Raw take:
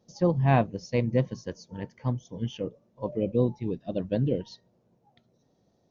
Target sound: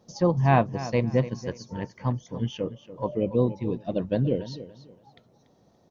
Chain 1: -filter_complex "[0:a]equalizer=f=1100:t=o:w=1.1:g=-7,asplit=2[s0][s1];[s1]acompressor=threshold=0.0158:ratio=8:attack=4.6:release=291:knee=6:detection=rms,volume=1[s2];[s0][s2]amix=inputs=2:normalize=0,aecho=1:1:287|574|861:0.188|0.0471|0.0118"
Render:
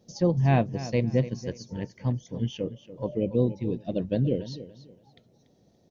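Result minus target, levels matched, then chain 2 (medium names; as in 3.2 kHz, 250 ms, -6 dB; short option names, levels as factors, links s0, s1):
1 kHz band -5.5 dB
-filter_complex "[0:a]equalizer=f=1100:t=o:w=1.1:g=5,asplit=2[s0][s1];[s1]acompressor=threshold=0.0158:ratio=8:attack=4.6:release=291:knee=6:detection=rms,volume=1[s2];[s0][s2]amix=inputs=2:normalize=0,aecho=1:1:287|574|861:0.188|0.0471|0.0118"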